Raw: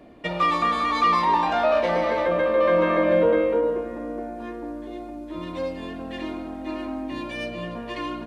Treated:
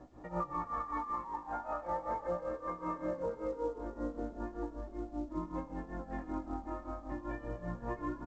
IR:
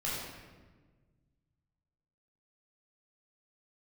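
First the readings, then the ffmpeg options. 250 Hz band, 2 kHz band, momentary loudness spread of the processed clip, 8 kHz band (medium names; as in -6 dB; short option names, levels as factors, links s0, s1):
-12.0 dB, -21.0 dB, 5 LU, no reading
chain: -filter_complex "[0:a]lowpass=f=1300:w=0.5412,lowpass=f=1300:w=1.3066,equalizer=f=430:t=o:w=0.65:g=-11.5,aecho=1:1:2.3:0.54,alimiter=limit=0.0891:level=0:latency=1:release=17,acompressor=threshold=0.0251:ratio=12,tremolo=f=5.2:d=0.87,flanger=delay=16:depth=4.8:speed=0.36,asplit=2[s0][s1];[s1]asplit=4[s2][s3][s4][s5];[s2]adelay=128,afreqshift=-37,volume=0.141[s6];[s3]adelay=256,afreqshift=-74,volume=0.0638[s7];[s4]adelay=384,afreqshift=-111,volume=0.0285[s8];[s5]adelay=512,afreqshift=-148,volume=0.0129[s9];[s6][s7][s8][s9]amix=inputs=4:normalize=0[s10];[s0][s10]amix=inputs=2:normalize=0,volume=1.58" -ar 16000 -c:a pcm_mulaw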